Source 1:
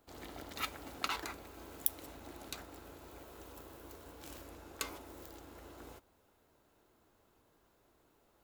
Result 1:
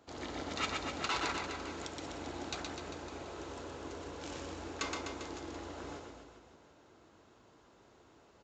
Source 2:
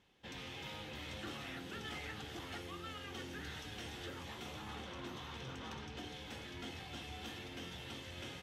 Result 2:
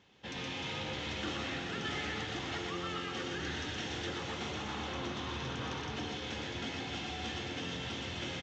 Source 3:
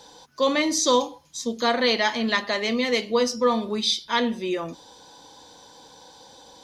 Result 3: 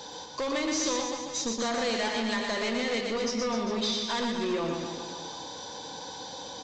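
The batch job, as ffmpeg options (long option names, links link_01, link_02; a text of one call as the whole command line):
ffmpeg -i in.wav -af "highpass=67,acompressor=threshold=-30dB:ratio=6,aresample=16000,asoftclip=type=tanh:threshold=-34dB,aresample=44100,aecho=1:1:120|252|397.2|556.9|732.6:0.631|0.398|0.251|0.158|0.1,volume=6.5dB" out.wav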